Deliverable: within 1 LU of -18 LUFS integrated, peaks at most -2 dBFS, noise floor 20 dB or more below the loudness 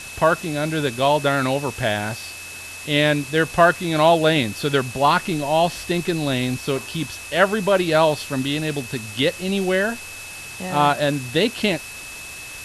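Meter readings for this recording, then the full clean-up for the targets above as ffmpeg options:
steady tone 2600 Hz; tone level -36 dBFS; noise floor -36 dBFS; noise floor target -41 dBFS; loudness -20.5 LUFS; peak -2.5 dBFS; loudness target -18.0 LUFS
-> -af "bandreject=f=2.6k:w=30"
-af "afftdn=nr=6:nf=-36"
-af "volume=2.5dB,alimiter=limit=-2dB:level=0:latency=1"

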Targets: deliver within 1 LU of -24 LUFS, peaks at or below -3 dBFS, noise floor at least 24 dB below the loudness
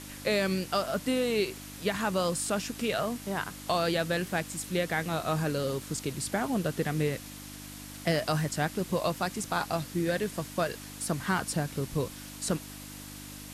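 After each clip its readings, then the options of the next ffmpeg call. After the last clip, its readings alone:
hum 50 Hz; harmonics up to 300 Hz; hum level -45 dBFS; noise floor -44 dBFS; noise floor target -55 dBFS; loudness -31.0 LUFS; peak -14.5 dBFS; loudness target -24.0 LUFS
-> -af "bandreject=f=50:t=h:w=4,bandreject=f=100:t=h:w=4,bandreject=f=150:t=h:w=4,bandreject=f=200:t=h:w=4,bandreject=f=250:t=h:w=4,bandreject=f=300:t=h:w=4"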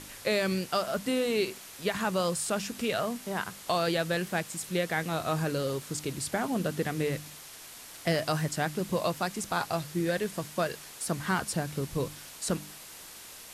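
hum none; noise floor -47 dBFS; noise floor target -55 dBFS
-> -af "afftdn=nr=8:nf=-47"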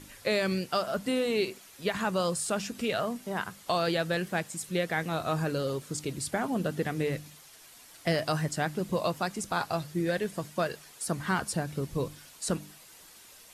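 noise floor -53 dBFS; noise floor target -56 dBFS
-> -af "afftdn=nr=6:nf=-53"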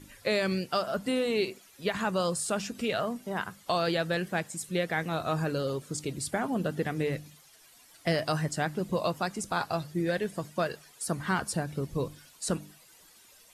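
noise floor -58 dBFS; loudness -31.5 LUFS; peak -15.5 dBFS; loudness target -24.0 LUFS
-> -af "volume=7.5dB"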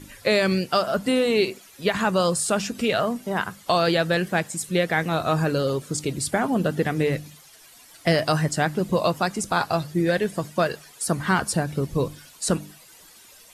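loudness -24.0 LUFS; peak -8.0 dBFS; noise floor -50 dBFS

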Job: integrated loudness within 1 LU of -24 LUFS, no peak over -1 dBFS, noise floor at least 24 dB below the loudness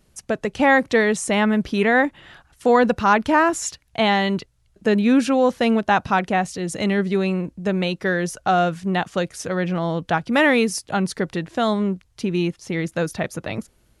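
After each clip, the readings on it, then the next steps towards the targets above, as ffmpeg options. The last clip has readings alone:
loudness -20.5 LUFS; peak -4.5 dBFS; loudness target -24.0 LUFS
-> -af "volume=-3.5dB"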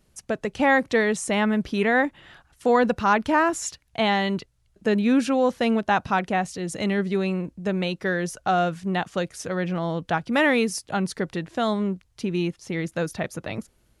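loudness -24.0 LUFS; peak -8.0 dBFS; noise floor -65 dBFS

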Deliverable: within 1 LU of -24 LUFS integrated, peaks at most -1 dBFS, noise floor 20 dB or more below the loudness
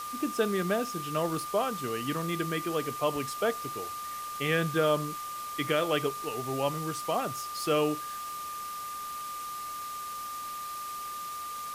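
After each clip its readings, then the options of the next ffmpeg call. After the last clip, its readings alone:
steady tone 1200 Hz; tone level -36 dBFS; noise floor -38 dBFS; noise floor target -52 dBFS; loudness -32.0 LUFS; peak -14.0 dBFS; loudness target -24.0 LUFS
-> -af "bandreject=f=1.2k:w=30"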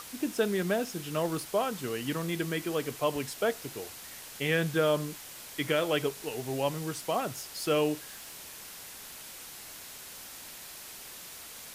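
steady tone none; noise floor -46 dBFS; noise floor target -53 dBFS
-> -af "afftdn=nr=7:nf=-46"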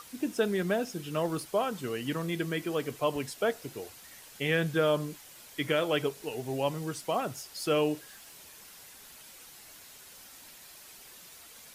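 noise floor -52 dBFS; loudness -31.5 LUFS; peak -15.0 dBFS; loudness target -24.0 LUFS
-> -af "volume=7.5dB"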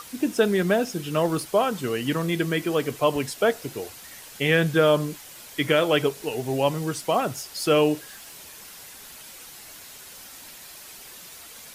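loudness -24.0 LUFS; peak -7.5 dBFS; noise floor -44 dBFS

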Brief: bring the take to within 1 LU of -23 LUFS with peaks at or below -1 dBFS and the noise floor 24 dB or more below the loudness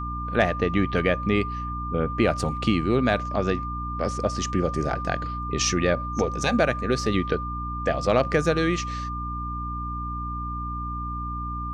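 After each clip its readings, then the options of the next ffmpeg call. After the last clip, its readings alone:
hum 60 Hz; harmonics up to 300 Hz; hum level -30 dBFS; steady tone 1200 Hz; tone level -31 dBFS; loudness -25.5 LUFS; peak -6.5 dBFS; loudness target -23.0 LUFS
-> -af "bandreject=f=60:t=h:w=6,bandreject=f=120:t=h:w=6,bandreject=f=180:t=h:w=6,bandreject=f=240:t=h:w=6,bandreject=f=300:t=h:w=6"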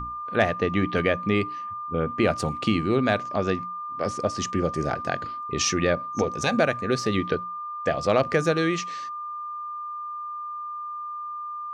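hum none; steady tone 1200 Hz; tone level -31 dBFS
-> -af "bandreject=f=1.2k:w=30"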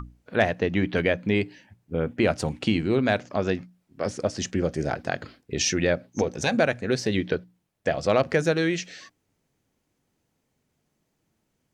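steady tone none; loudness -26.0 LUFS; peak -8.0 dBFS; loudness target -23.0 LUFS
-> -af "volume=3dB"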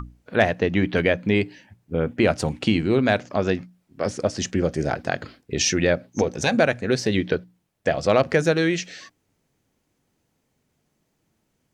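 loudness -23.0 LUFS; peak -5.0 dBFS; noise floor -73 dBFS

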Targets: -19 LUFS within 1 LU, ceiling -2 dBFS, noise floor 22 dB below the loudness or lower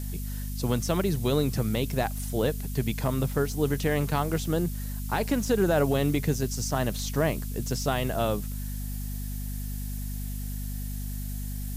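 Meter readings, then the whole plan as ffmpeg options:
hum 50 Hz; harmonics up to 250 Hz; hum level -31 dBFS; noise floor -33 dBFS; noise floor target -51 dBFS; loudness -29.0 LUFS; peak -13.0 dBFS; loudness target -19.0 LUFS
-> -af "bandreject=f=50:t=h:w=6,bandreject=f=100:t=h:w=6,bandreject=f=150:t=h:w=6,bandreject=f=200:t=h:w=6,bandreject=f=250:t=h:w=6"
-af "afftdn=nr=18:nf=-33"
-af "volume=10dB"

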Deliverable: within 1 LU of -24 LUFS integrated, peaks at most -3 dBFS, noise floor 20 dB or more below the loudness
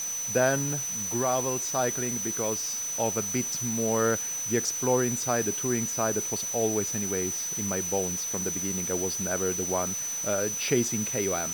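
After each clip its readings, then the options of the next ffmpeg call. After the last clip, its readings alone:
steady tone 6000 Hz; tone level -30 dBFS; noise floor -33 dBFS; noise floor target -47 dBFS; loudness -27.0 LUFS; peak -11.0 dBFS; loudness target -24.0 LUFS
-> -af "bandreject=f=6k:w=30"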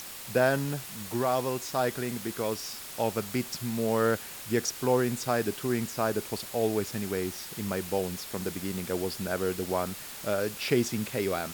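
steady tone none; noise floor -42 dBFS; noise floor target -50 dBFS
-> -af "afftdn=nr=8:nf=-42"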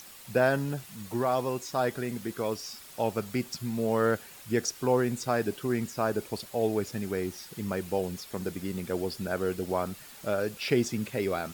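noise floor -49 dBFS; noise floor target -51 dBFS
-> -af "afftdn=nr=6:nf=-49"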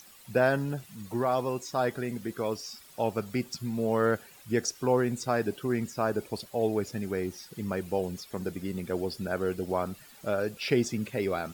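noise floor -53 dBFS; loudness -31.0 LUFS; peak -12.5 dBFS; loudness target -24.0 LUFS
-> -af "volume=7dB"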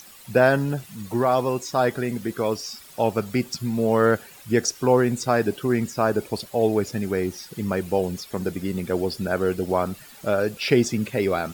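loudness -24.0 LUFS; peak -5.5 dBFS; noise floor -46 dBFS

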